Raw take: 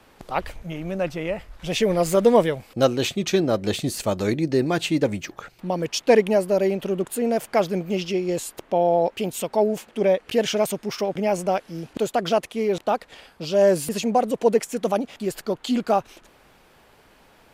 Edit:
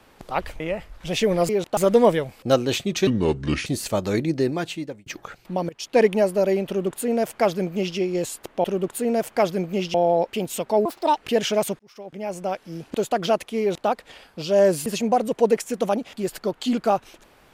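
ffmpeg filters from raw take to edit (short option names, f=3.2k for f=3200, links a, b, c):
-filter_complex "[0:a]asplit=13[a][b][c][d][e][f][g][h][i][j][k][l][m];[a]atrim=end=0.602[n];[b]atrim=start=1.188:end=2.082[o];[c]atrim=start=12.628:end=12.912[p];[d]atrim=start=2.078:end=3.384[q];[e]atrim=start=3.38:end=3.8,asetpts=PTS-STARTPTS,asetrate=31311,aresample=44100,atrim=end_sample=26087,asetpts=PTS-STARTPTS[r];[f]atrim=start=3.796:end=5.2,asetpts=PTS-STARTPTS,afade=t=out:st=0.664:d=0.74[s];[g]atrim=start=5.2:end=5.83,asetpts=PTS-STARTPTS,afade=t=in:d=0.004:c=hsin,afade=t=out:st=0.626:d=0.004:c=hsin:silence=0.0944061[t];[h]atrim=start=5.83:end=8.782,asetpts=PTS-STARTPTS,afade=t=in:d=0.36:silence=0.0944061[u];[i]atrim=start=6.808:end=8.112[v];[j]atrim=start=8.778:end=9.694[w];[k]atrim=start=9.69:end=10.2,asetpts=PTS-STARTPTS,asetrate=70119,aresample=44100,atrim=end_sample=14145,asetpts=PTS-STARTPTS[x];[l]atrim=start=10.196:end=10.82,asetpts=PTS-STARTPTS,afade=t=out:st=0.62:d=0.004:c=hsin[y];[m]atrim=start=10.82,asetpts=PTS-STARTPTS,afade=t=in:d=1.15[z];[n][o]acrossfade=d=0.004:c1=hsin:c2=hsin[aa];[aa][p]acrossfade=d=0.004:c1=hsin:c2=hsin[ab];[ab][q]acrossfade=d=0.004:c1=hsin:c2=hsin[ac];[ac][r]acrossfade=d=0.004:c1=hsin:c2=hsin[ad];[s][t][u]concat=n=3:v=0:a=1[ae];[ad][ae]acrossfade=d=0.004:c1=hsin:c2=hsin[af];[af][v]acrossfade=d=0.004:c1=hsin:c2=hsin[ag];[ag][w]acrossfade=d=0.004:c1=hsin:c2=hsin[ah];[ah][x]acrossfade=d=0.004:c1=hsin:c2=hsin[ai];[y][z]concat=n=2:v=0:a=1[aj];[ai][aj]acrossfade=d=0.004:c1=hsin:c2=hsin"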